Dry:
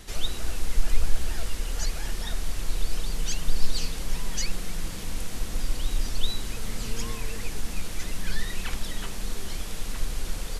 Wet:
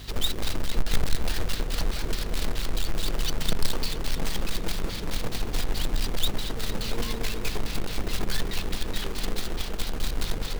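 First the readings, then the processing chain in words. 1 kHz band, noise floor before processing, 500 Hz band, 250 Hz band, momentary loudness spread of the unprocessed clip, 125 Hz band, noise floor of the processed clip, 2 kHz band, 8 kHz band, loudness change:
+4.5 dB, -34 dBFS, +6.5 dB, +5.0 dB, 4 LU, +2.0 dB, -33 dBFS, +2.5 dB, -1.0 dB, +2.5 dB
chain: in parallel at -2.5 dB: compressor with a negative ratio -22 dBFS, ratio -1; on the sum: hum 50 Hz, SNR 19 dB; LFO low-pass square 4.7 Hz 420–4200 Hz; companded quantiser 4-bit; tape echo 225 ms, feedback 82%, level -10.5 dB, low-pass 5.4 kHz; trim -5.5 dB

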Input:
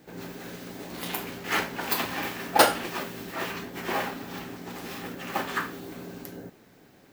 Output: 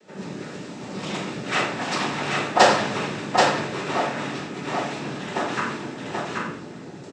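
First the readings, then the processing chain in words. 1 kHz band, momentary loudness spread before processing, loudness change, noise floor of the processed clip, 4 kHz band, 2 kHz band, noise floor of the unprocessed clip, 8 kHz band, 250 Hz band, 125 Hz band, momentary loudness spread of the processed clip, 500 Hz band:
+6.5 dB, 17 LU, +5.0 dB, -39 dBFS, +5.0 dB, +5.0 dB, -56 dBFS, +2.0 dB, +6.5 dB, +8.5 dB, 17 LU, +7.0 dB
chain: noise-vocoded speech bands 12; on a send: delay 781 ms -3 dB; on the sum: simulated room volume 140 m³, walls mixed, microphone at 1 m; trim +1 dB

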